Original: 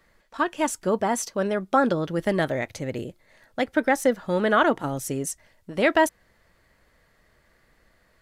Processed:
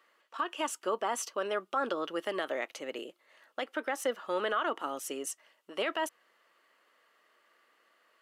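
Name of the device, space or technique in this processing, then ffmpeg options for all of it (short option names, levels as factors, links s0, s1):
laptop speaker: -af "highpass=f=310:w=0.5412,highpass=f=310:w=1.3066,equalizer=f=1200:t=o:w=0.47:g=9.5,equalizer=f=2900:t=o:w=0.31:g=11.5,alimiter=limit=0.188:level=0:latency=1:release=84,volume=0.447"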